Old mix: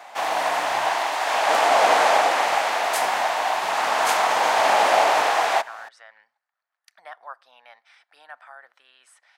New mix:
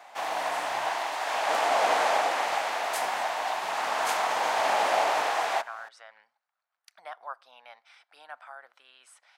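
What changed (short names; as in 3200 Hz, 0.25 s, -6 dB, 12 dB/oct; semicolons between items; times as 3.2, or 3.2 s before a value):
speech: add bell 1800 Hz -7.5 dB 0.21 oct; background -7.0 dB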